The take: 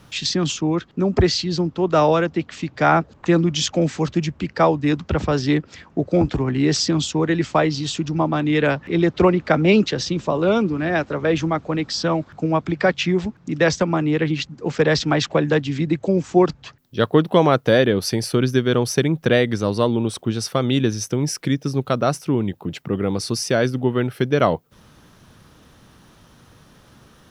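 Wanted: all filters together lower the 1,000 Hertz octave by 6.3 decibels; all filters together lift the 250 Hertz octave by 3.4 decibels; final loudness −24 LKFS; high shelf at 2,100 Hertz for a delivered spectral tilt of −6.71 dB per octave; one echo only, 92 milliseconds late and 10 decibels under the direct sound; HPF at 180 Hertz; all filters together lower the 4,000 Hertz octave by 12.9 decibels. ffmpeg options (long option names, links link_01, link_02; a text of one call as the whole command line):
ffmpeg -i in.wav -af "highpass=180,equalizer=frequency=250:width_type=o:gain=7,equalizer=frequency=1000:width_type=o:gain=-7,highshelf=frequency=2100:gain=-9,equalizer=frequency=4000:width_type=o:gain=-7.5,aecho=1:1:92:0.316,volume=-5dB" out.wav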